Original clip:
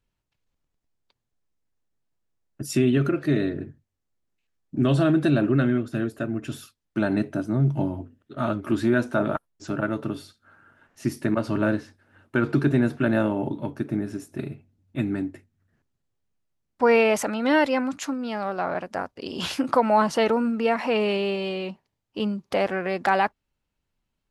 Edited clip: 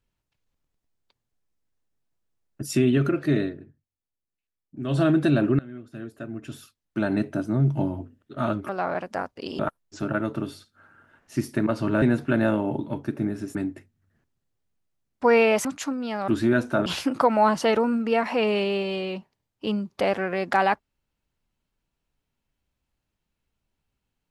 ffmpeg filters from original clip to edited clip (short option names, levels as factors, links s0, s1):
-filter_complex "[0:a]asplit=11[s0][s1][s2][s3][s4][s5][s6][s7][s8][s9][s10];[s0]atrim=end=3.57,asetpts=PTS-STARTPTS,afade=t=out:st=3.39:d=0.18:silence=0.266073[s11];[s1]atrim=start=3.57:end=4.84,asetpts=PTS-STARTPTS,volume=0.266[s12];[s2]atrim=start=4.84:end=5.59,asetpts=PTS-STARTPTS,afade=t=in:d=0.18:silence=0.266073,afade=t=out:st=0.746:d=0.004:c=hsin:silence=0.0668344[s13];[s3]atrim=start=5.59:end=8.692,asetpts=PTS-STARTPTS,afade=t=in:d=1.71:silence=0.0668344[s14];[s4]atrim=start=18.488:end=19.392[s15];[s5]atrim=start=9.268:end=11.702[s16];[s6]atrim=start=12.738:end=14.272[s17];[s7]atrim=start=15.128:end=17.232[s18];[s8]atrim=start=17.858:end=18.492[s19];[s9]atrim=start=8.688:end=9.272[s20];[s10]atrim=start=19.388[s21];[s11][s12][s13][s14]concat=n=4:v=0:a=1[s22];[s22][s15]acrossfade=d=0.004:c1=hsin:c2=hsin[s23];[s23][s16]acrossfade=d=0.004:c1=hsin:c2=hsin[s24];[s24][s17]acrossfade=d=0.004:c1=hsin:c2=hsin[s25];[s25][s18]acrossfade=d=0.004:c1=hsin:c2=hsin[s26];[s26][s19]acrossfade=d=0.004:c1=hsin:c2=hsin[s27];[s27][s20]acrossfade=d=0.004:c1=hsin:c2=hsin[s28];[s28][s21]acrossfade=d=0.004:c1=hsin:c2=hsin"